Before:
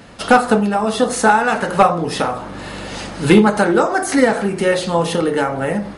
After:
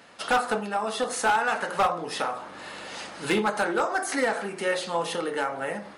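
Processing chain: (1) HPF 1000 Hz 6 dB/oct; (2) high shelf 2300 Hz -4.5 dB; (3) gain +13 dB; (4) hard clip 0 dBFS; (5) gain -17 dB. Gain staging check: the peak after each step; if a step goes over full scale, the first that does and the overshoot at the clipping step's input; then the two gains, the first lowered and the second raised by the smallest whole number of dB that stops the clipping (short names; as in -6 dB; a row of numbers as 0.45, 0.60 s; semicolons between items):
-2.0, -3.0, +10.0, 0.0, -17.0 dBFS; step 3, 10.0 dB; step 3 +3 dB, step 5 -7 dB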